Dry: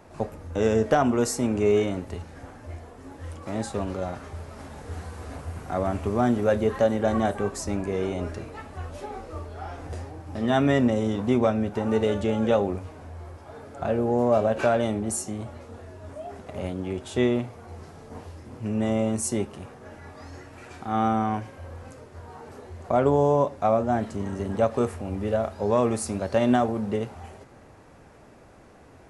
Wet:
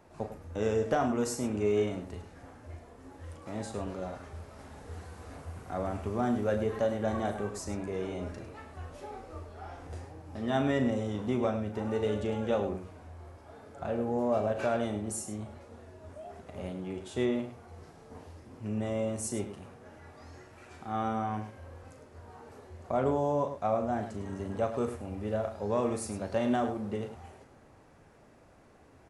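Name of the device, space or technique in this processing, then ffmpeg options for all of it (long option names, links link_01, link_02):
slapback doubling: -filter_complex "[0:a]asplit=3[link_01][link_02][link_03];[link_02]adelay=38,volume=-9dB[link_04];[link_03]adelay=103,volume=-10.5dB[link_05];[link_01][link_04][link_05]amix=inputs=3:normalize=0,volume=-8dB"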